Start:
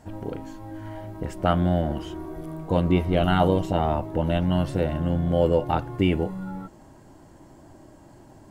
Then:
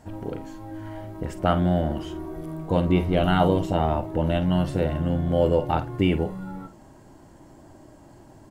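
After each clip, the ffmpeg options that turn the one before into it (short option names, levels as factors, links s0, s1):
-filter_complex "[0:a]asplit=2[s0][s1];[s1]adelay=50,volume=0.237[s2];[s0][s2]amix=inputs=2:normalize=0"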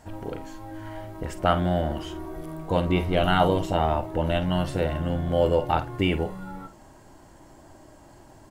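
-af "equalizer=f=190:t=o:w=2.9:g=-7,volume=1.41"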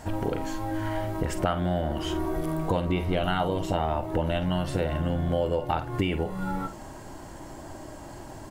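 -af "acompressor=threshold=0.0251:ratio=6,volume=2.66"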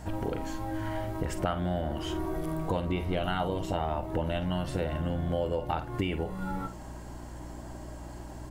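-af "aeval=exprs='val(0)+0.0112*(sin(2*PI*60*n/s)+sin(2*PI*2*60*n/s)/2+sin(2*PI*3*60*n/s)/3+sin(2*PI*4*60*n/s)/4+sin(2*PI*5*60*n/s)/5)':c=same,volume=0.631"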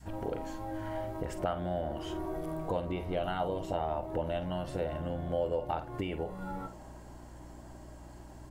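-af "adynamicequalizer=threshold=0.00708:dfrequency=590:dqfactor=1:tfrequency=590:tqfactor=1:attack=5:release=100:ratio=0.375:range=3.5:mode=boostabove:tftype=bell,volume=0.447"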